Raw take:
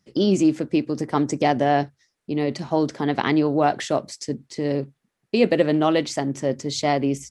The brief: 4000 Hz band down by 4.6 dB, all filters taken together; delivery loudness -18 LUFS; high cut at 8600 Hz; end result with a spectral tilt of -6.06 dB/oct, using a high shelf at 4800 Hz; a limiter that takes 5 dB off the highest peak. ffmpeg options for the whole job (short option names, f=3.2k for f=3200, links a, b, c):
-af "lowpass=8.6k,equalizer=f=4k:t=o:g=-7.5,highshelf=f=4.8k:g=3,volume=5.5dB,alimiter=limit=-5dB:level=0:latency=1"